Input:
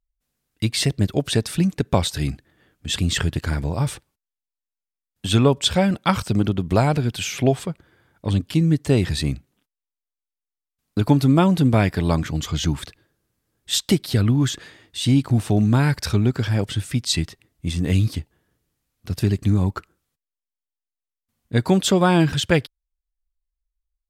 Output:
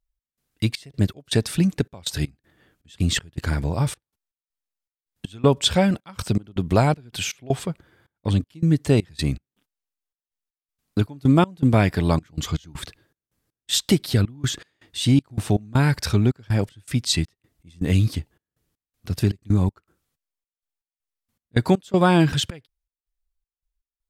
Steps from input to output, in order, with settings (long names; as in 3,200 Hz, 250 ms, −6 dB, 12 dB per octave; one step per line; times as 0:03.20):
gate pattern "x.xx.x.xxx." 80 BPM −24 dB